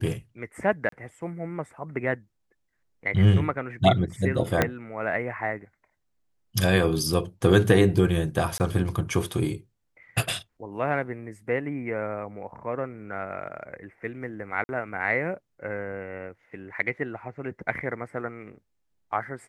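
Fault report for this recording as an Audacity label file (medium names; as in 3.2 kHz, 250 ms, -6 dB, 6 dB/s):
0.890000	0.920000	dropout 33 ms
4.620000	4.620000	pop -6 dBFS
8.580000	8.600000	dropout 19 ms
14.640000	14.690000	dropout 50 ms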